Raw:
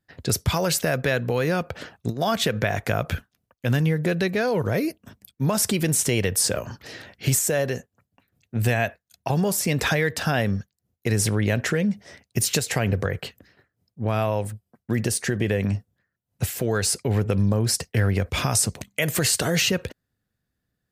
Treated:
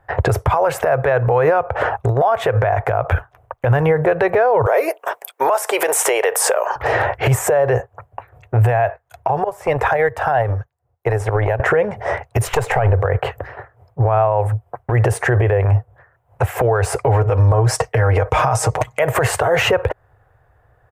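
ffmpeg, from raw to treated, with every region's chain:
ffmpeg -i in.wav -filter_complex "[0:a]asettb=1/sr,asplit=3[link_01][link_02][link_03];[link_01]atrim=end=4.664[link_04];[link_02]atrim=start=4.66:end=6.76,asetpts=PTS-STARTPTS,afade=type=in:duration=0.004:curve=qsin,afade=type=out:start_time=2.096:duration=0.004:curve=qsin,highpass=frequency=400:width=0.5412,highpass=frequency=400:width=1.3066,highshelf=frequency=3000:gain=11.5,acompressor=threshold=-15dB:ratio=3:attack=3.2:release=140:knee=1:detection=peak[link_05];[link_03]atrim=start=6.756[link_06];[link_04][link_05]acrossfade=duration=0.004:curve1=hsin:curve2=qsin[link_07];[link_07][link_06]acrossfade=duration=0.004:curve1=qsin:curve2=hsin,asettb=1/sr,asplit=3[link_08][link_09][link_10];[link_08]atrim=end=9.444[link_11];[link_09]atrim=start=9.44:end=11.6,asetpts=PTS-STARTPTS,afade=type=in:duration=0.004:curve=qsin,afade=type=out:start_time=2.156:duration=0.004:curve=qsin,agate=range=-16dB:threshold=-21dB:ratio=16:release=100:detection=peak,acrossover=split=250|6600[link_12][link_13][link_14];[link_12]acompressor=threshold=-38dB:ratio=4[link_15];[link_13]acompressor=threshold=-34dB:ratio=4[link_16];[link_14]acompressor=threshold=-46dB:ratio=4[link_17];[link_15][link_16][link_17]amix=inputs=3:normalize=0[link_18];[link_10]atrim=start=11.596[link_19];[link_11][link_18]acrossfade=duration=0.004:curve1=hsin:curve2=qsin[link_20];[link_20][link_19]acrossfade=duration=0.004:curve1=qsin:curve2=hsin,asettb=1/sr,asplit=3[link_21][link_22][link_23];[link_21]atrim=end=12.474[link_24];[link_22]atrim=start=12.47:end=12.94,asetpts=PTS-STARTPTS,afade=type=in:duration=0.004:curve=qsin,afade=type=out:start_time=0.466:duration=0.004:curve=qsin,highshelf=frequency=11000:gain=-4.5,aeval=exprs='(tanh(4.47*val(0)+0.65)-tanh(0.65))/4.47':channel_layout=same[link_25];[link_23]atrim=start=12.936[link_26];[link_24][link_25]acrossfade=duration=0.004:curve1=hsin:curve2=qsin[link_27];[link_27][link_26]acrossfade=duration=0.004:curve1=qsin:curve2=hsin,asettb=1/sr,asplit=3[link_28][link_29][link_30];[link_28]atrim=end=17.064[link_31];[link_29]atrim=start=17.06:end=18.99,asetpts=PTS-STARTPTS,afade=type=in:duration=0.004:curve=qsin,afade=type=out:start_time=1.926:duration=0.004:curve=qsin,equalizer=frequency=5900:width_type=o:width=1.3:gain=8,aecho=1:1:6.4:0.62,atrim=end_sample=85113[link_32];[link_30]atrim=start=18.986[link_33];[link_31][link_32]acrossfade=duration=0.004:curve1=hsin:curve2=qsin[link_34];[link_34][link_33]acrossfade=duration=0.004:curve1=qsin:curve2=hsin,firequalizer=gain_entry='entry(120,0);entry(190,-26);entry(410,0);entry(800,10);entry(1500,-1);entry(4300,-26);entry(7700,-21)':delay=0.05:min_phase=1,acompressor=threshold=-34dB:ratio=6,alimiter=level_in=31.5dB:limit=-1dB:release=50:level=0:latency=1,volume=-6dB" out.wav

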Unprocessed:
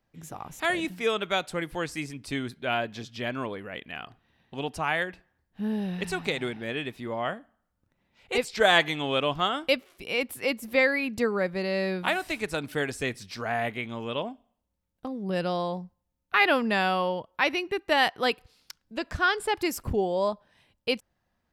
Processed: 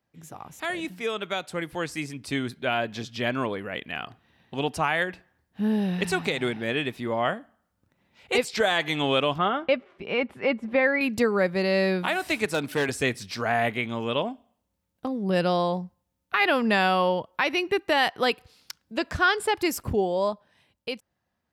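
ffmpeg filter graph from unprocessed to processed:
ffmpeg -i in.wav -filter_complex "[0:a]asettb=1/sr,asplit=3[link_01][link_02][link_03];[link_01]atrim=end=9.384[link_04];[link_02]atrim=start=9.38:end=11.01,asetpts=PTS-STARTPTS,afade=type=in:duration=0.004:curve=qsin,afade=type=out:start_time=1.626:duration=0.004:curve=qsin,lowpass=1900,aecho=1:1:5:0.31,atrim=end_sample=71883[link_05];[link_03]atrim=start=11.006[link_06];[link_04][link_05]acrossfade=duration=0.004:curve1=hsin:curve2=qsin[link_07];[link_07][link_06]acrossfade=duration=0.004:curve1=qsin:curve2=hsin,asettb=1/sr,asplit=3[link_08][link_09][link_10];[link_08]atrim=end=12.454[link_11];[link_09]atrim=start=12.45:end=12.89,asetpts=PTS-STARTPTS,afade=type=in:duration=0.004:curve=qsin,afade=type=out:start_time=0.436:duration=0.004:curve=qsin,highpass=120,volume=24.5dB,asoftclip=hard,volume=-24.5dB[link_12];[link_10]atrim=start=12.886[link_13];[link_11][link_12]acrossfade=duration=0.004:curve1=hsin:curve2=qsin[link_14];[link_14][link_13]acrossfade=duration=0.004:curve1=qsin:curve2=hsin,highpass=68,alimiter=limit=-16.5dB:level=0:latency=1:release=197,dynaudnorm=framelen=470:gausssize=9:maxgain=7dB,volume=-2dB" out.wav

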